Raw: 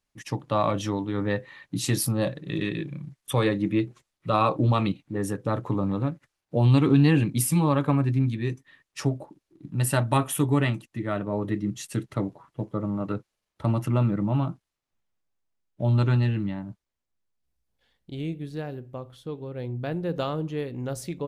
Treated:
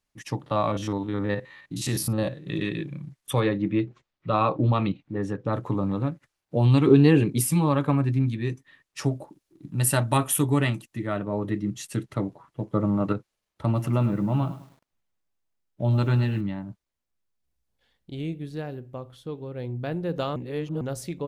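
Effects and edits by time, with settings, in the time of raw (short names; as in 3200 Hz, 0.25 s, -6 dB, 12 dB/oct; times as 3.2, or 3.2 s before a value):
0.46–2.45 stepped spectrum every 50 ms
3.4–5.53 air absorption 140 m
6.87–7.41 bell 410 Hz +12 dB 0.47 oct
9.04–11.07 high shelf 5600 Hz +7.5 dB
12.73–13.13 gain +5 dB
13.65–16.41 lo-fi delay 0.104 s, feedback 35%, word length 8-bit, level -13.5 dB
20.36–20.81 reverse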